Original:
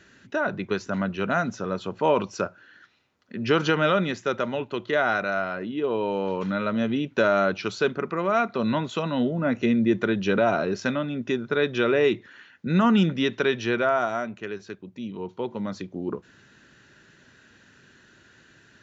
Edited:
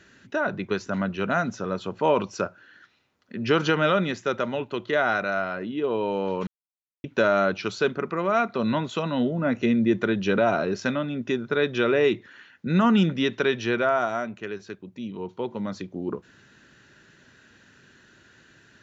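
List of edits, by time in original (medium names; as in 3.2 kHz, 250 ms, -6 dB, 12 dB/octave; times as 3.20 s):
6.47–7.04 s: mute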